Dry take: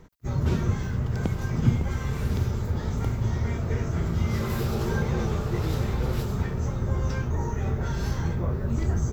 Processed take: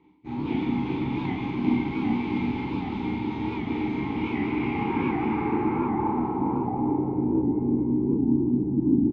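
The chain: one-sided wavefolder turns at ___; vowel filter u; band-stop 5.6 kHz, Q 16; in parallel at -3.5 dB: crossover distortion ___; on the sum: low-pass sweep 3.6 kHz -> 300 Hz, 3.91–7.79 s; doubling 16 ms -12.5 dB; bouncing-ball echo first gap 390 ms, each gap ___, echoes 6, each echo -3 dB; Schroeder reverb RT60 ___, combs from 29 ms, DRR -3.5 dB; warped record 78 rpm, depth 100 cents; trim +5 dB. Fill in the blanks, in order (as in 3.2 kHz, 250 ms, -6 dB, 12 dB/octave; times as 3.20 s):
-22 dBFS, -54 dBFS, 0.6×, 0.7 s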